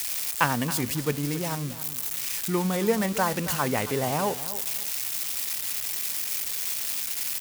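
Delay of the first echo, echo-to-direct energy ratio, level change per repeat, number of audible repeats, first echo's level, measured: 0.274 s, -14.0 dB, -13.0 dB, 2, -14.0 dB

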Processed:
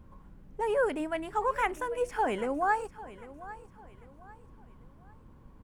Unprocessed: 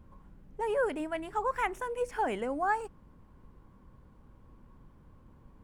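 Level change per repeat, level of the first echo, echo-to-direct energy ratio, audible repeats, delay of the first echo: -9.0 dB, -17.0 dB, -16.5 dB, 2, 0.797 s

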